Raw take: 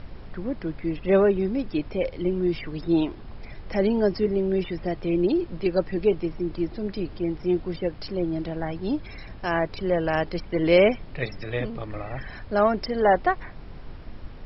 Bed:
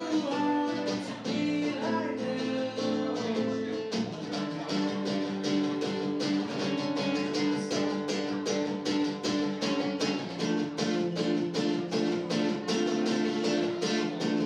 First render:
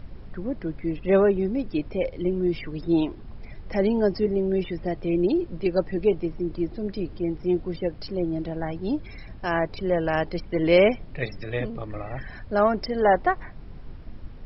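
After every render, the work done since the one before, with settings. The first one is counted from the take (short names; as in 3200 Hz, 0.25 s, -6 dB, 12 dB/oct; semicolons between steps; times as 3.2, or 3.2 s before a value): denoiser 6 dB, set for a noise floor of -41 dBFS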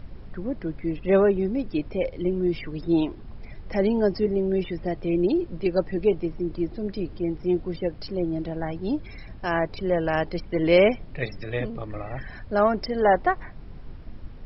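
nothing audible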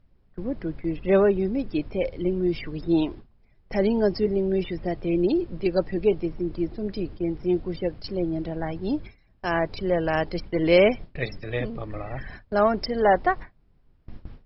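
gate with hold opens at -27 dBFS; dynamic EQ 4700 Hz, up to +3 dB, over -48 dBFS, Q 1.4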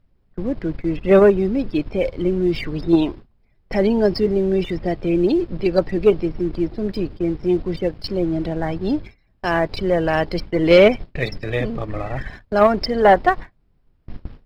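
in parallel at -2 dB: level quantiser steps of 18 dB; on the sum: sample leveller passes 1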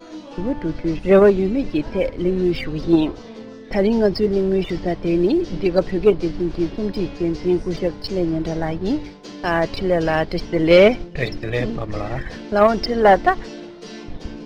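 add bed -7 dB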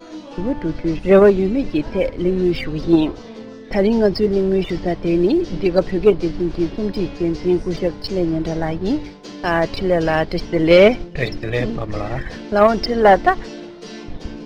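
gain +1.5 dB; limiter -2 dBFS, peak gain reduction 1 dB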